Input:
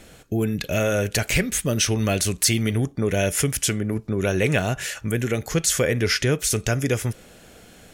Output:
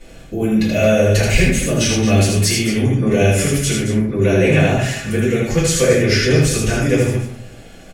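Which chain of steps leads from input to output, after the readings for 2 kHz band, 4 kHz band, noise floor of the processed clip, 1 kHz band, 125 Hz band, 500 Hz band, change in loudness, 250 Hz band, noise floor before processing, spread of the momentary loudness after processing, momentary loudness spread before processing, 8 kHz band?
+6.0 dB, +4.5 dB, -39 dBFS, +5.5 dB, +8.0 dB, +8.5 dB, +7.0 dB, +8.5 dB, -49 dBFS, 6 LU, 6 LU, +2.5 dB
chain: high shelf 10000 Hz -9.5 dB; loudspeakers at several distances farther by 27 m -3 dB, 76 m -11 dB; shoebox room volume 33 m³, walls mixed, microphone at 1.9 m; gain -6.5 dB

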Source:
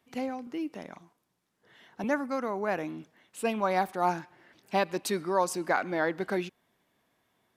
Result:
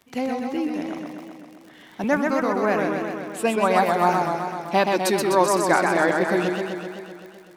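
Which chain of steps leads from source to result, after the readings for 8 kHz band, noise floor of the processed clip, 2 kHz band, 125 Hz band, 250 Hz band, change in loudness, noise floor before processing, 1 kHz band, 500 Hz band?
+9.5 dB, -48 dBFS, +9.5 dB, +9.5 dB, +9.5 dB, +8.5 dB, -77 dBFS, +9.0 dB, +9.5 dB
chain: crackle 54/s -44 dBFS; warbling echo 0.128 s, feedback 70%, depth 120 cents, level -4 dB; gain +7 dB

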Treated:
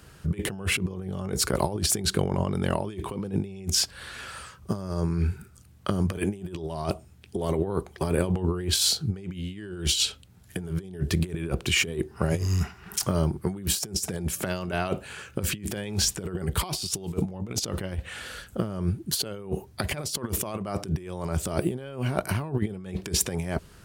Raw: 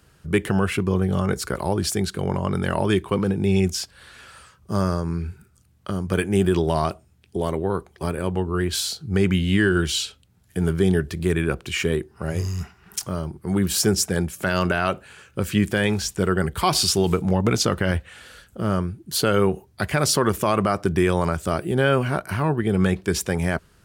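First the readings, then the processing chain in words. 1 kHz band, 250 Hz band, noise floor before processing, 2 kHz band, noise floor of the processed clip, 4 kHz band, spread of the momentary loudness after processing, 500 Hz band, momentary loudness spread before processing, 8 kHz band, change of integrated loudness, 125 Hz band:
-9.0 dB, -7.5 dB, -57 dBFS, -7.5 dB, -52 dBFS, -1.5 dB, 10 LU, -8.5 dB, 9 LU, -0.5 dB, -5.5 dB, -5.0 dB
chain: dynamic EQ 1500 Hz, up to -7 dB, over -39 dBFS, Q 1.5; negative-ratio compressor -27 dBFS, ratio -0.5

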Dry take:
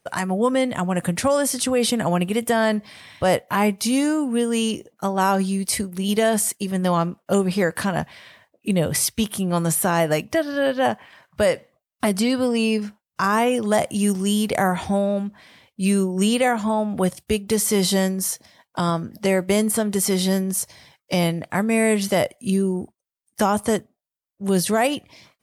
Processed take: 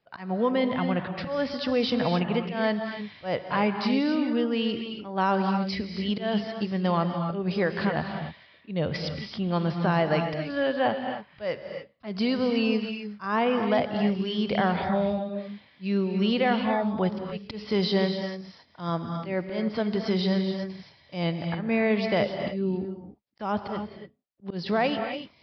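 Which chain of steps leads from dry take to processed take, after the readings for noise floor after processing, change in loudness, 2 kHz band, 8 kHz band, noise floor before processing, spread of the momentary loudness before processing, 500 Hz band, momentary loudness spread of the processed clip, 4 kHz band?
-59 dBFS, -6.0 dB, -5.0 dB, under -35 dB, -84 dBFS, 7 LU, -5.5 dB, 11 LU, -5.0 dB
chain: auto swell 0.17 s; non-linear reverb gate 0.31 s rising, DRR 5.5 dB; downsampling 11025 Hz; gain -5 dB

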